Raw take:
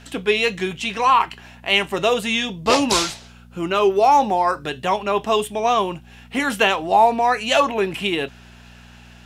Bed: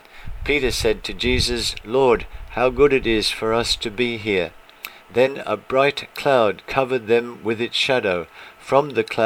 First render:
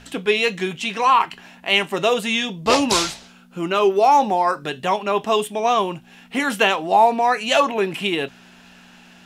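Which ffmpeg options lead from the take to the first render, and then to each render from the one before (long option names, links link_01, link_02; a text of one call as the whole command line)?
ffmpeg -i in.wav -af "bandreject=frequency=60:width_type=h:width=4,bandreject=frequency=120:width_type=h:width=4" out.wav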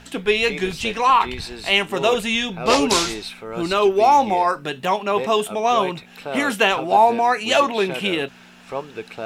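ffmpeg -i in.wav -i bed.wav -filter_complex "[1:a]volume=-12dB[link_01];[0:a][link_01]amix=inputs=2:normalize=0" out.wav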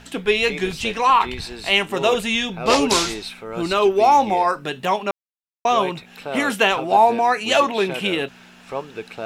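ffmpeg -i in.wav -filter_complex "[0:a]asplit=3[link_01][link_02][link_03];[link_01]atrim=end=5.11,asetpts=PTS-STARTPTS,afade=type=out:start_time=5.106:duration=0.004:curve=hsin[link_04];[link_02]atrim=start=5.11:end=5.65,asetpts=PTS-STARTPTS,volume=0[link_05];[link_03]atrim=start=5.65,asetpts=PTS-STARTPTS,afade=type=in:duration=0.004:curve=hsin[link_06];[link_04][link_05][link_06]concat=n=3:v=0:a=1" out.wav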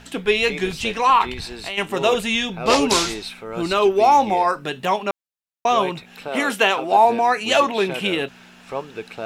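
ffmpeg -i in.wav -filter_complex "[0:a]asplit=3[link_01][link_02][link_03];[link_01]afade=type=out:start_time=1.32:duration=0.02[link_04];[link_02]acompressor=threshold=-25dB:ratio=6:attack=3.2:release=140:knee=1:detection=peak,afade=type=in:start_time=1.32:duration=0.02,afade=type=out:start_time=1.77:duration=0.02[link_05];[link_03]afade=type=in:start_time=1.77:duration=0.02[link_06];[link_04][link_05][link_06]amix=inputs=3:normalize=0,asettb=1/sr,asplit=3[link_07][link_08][link_09];[link_07]atrim=end=6.284[link_10];[link_08]atrim=start=6.28:end=7.05,asetpts=PTS-STARTPTS,afade=type=in:duration=0.004:curve=qsin,afade=type=out:start_time=0.766:duration=0.004:curve=qsin,highpass=220[link_11];[link_09]atrim=start=7.046[link_12];[link_10][link_11]acrossfade=duration=0.004:curve1=hsin:curve2=qsin[link_13];[link_13][link_12]acrossfade=duration=0.004:curve1=qsin:curve2=hsin" out.wav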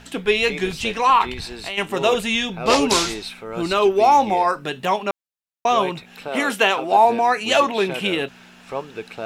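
ffmpeg -i in.wav -af anull out.wav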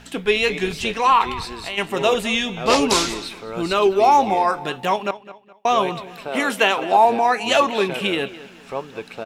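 ffmpeg -i in.wav -filter_complex "[0:a]asplit=2[link_01][link_02];[link_02]adelay=209,lowpass=frequency=4800:poles=1,volume=-16dB,asplit=2[link_03][link_04];[link_04]adelay=209,lowpass=frequency=4800:poles=1,volume=0.35,asplit=2[link_05][link_06];[link_06]adelay=209,lowpass=frequency=4800:poles=1,volume=0.35[link_07];[link_01][link_03][link_05][link_07]amix=inputs=4:normalize=0" out.wav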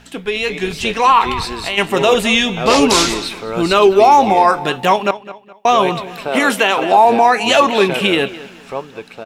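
ffmpeg -i in.wav -af "alimiter=limit=-9.5dB:level=0:latency=1:release=53,dynaudnorm=framelen=190:gausssize=9:maxgain=11.5dB" out.wav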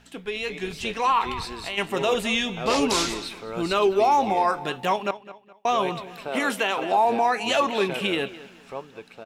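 ffmpeg -i in.wav -af "volume=-10.5dB" out.wav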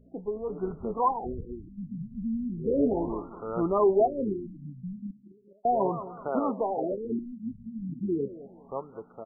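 ffmpeg -i in.wav -af "asoftclip=type=hard:threshold=-16.5dB,afftfilt=real='re*lt(b*sr/1024,250*pow(1500/250,0.5+0.5*sin(2*PI*0.36*pts/sr)))':imag='im*lt(b*sr/1024,250*pow(1500/250,0.5+0.5*sin(2*PI*0.36*pts/sr)))':win_size=1024:overlap=0.75" out.wav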